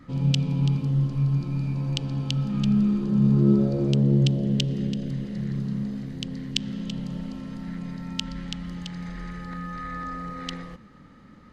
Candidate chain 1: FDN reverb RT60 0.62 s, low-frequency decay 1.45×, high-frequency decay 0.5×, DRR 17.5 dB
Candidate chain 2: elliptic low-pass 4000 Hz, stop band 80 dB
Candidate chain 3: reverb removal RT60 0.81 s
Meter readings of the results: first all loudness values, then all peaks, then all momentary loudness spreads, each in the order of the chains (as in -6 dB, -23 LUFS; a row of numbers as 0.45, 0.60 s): -27.0, -27.0, -28.0 LUFS; -2.5, -5.0, -2.5 dBFS; 14, 15, 15 LU